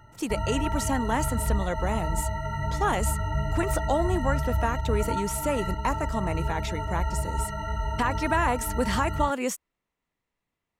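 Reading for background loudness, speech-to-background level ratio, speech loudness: -30.5 LUFS, 1.0 dB, -29.5 LUFS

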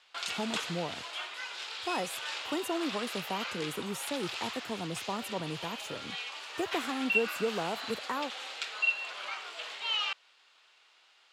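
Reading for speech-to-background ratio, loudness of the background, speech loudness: -1.5 dB, -35.5 LUFS, -37.0 LUFS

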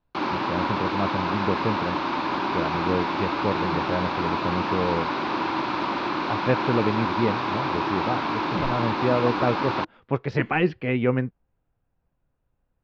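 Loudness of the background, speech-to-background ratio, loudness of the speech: -26.5 LUFS, -1.0 dB, -27.5 LUFS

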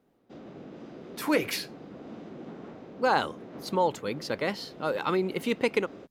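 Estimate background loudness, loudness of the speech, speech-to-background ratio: -45.5 LUFS, -29.5 LUFS, 16.0 dB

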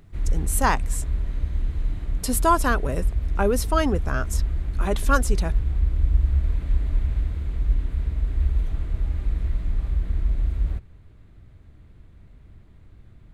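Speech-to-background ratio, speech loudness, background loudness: 1.5 dB, -25.5 LUFS, -27.0 LUFS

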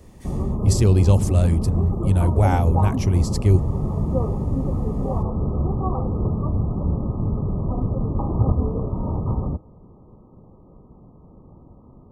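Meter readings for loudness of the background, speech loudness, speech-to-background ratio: -24.5 LUFS, -20.0 LUFS, 4.5 dB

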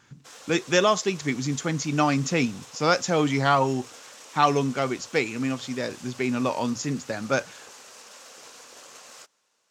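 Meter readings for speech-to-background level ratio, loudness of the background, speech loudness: 19.5 dB, -44.5 LUFS, -25.0 LUFS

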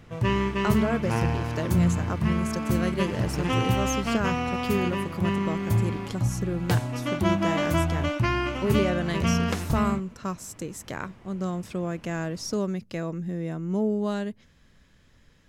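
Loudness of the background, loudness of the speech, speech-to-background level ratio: -27.0 LUFS, -31.0 LUFS, -4.0 dB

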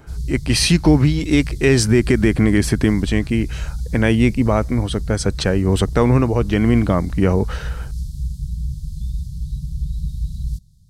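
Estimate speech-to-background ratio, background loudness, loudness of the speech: 11.0 dB, -28.5 LUFS, -17.5 LUFS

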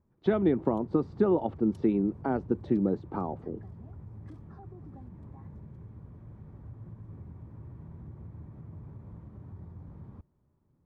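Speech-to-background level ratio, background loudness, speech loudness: 18.5 dB, -47.0 LUFS, -28.5 LUFS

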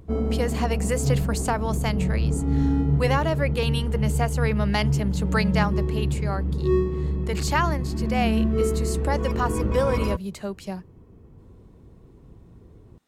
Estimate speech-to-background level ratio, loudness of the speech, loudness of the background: -3.0 dB, -28.5 LUFS, -25.5 LUFS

